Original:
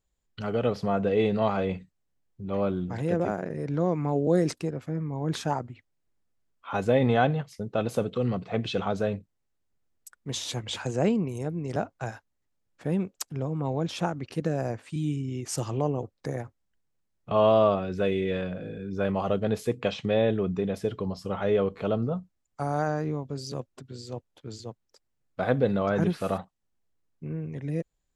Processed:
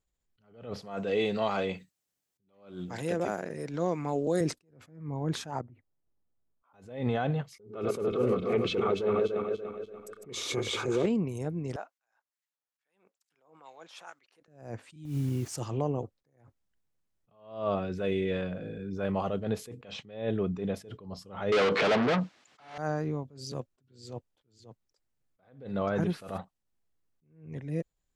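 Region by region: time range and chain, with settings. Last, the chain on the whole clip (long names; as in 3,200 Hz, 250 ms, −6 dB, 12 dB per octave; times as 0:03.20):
0:00.82–0:04.41: high-pass filter 240 Hz 6 dB per octave + high-shelf EQ 3,100 Hz +11.5 dB
0:05.61–0:06.74: low-pass filter 1,100 Hz + downward compressor 2 to 1, threshold −47 dBFS
0:07.54–0:11.06: feedback delay that plays each chunk backwards 145 ms, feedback 65%, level −7 dB + hollow resonant body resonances 400/1,200/2,200 Hz, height 17 dB, ringing for 30 ms + highs frequency-modulated by the lows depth 0.12 ms
0:11.76–0:14.48: high-pass filter 970 Hz + two-band tremolo in antiphase 2.3 Hz, crossover 1,400 Hz
0:15.05–0:15.55: low-shelf EQ 360 Hz +10 dB + downward compressor 8 to 1, threshold −23 dBFS + bit-depth reduction 8 bits, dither none
0:21.52–0:22.78: mid-hump overdrive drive 38 dB, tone 2,600 Hz, clips at −13 dBFS + band-pass filter 130–4,100 Hz + high-shelf EQ 2,600 Hz +11.5 dB
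whole clip: brickwall limiter −16.5 dBFS; level that may rise only so fast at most 110 dB per second; level −2 dB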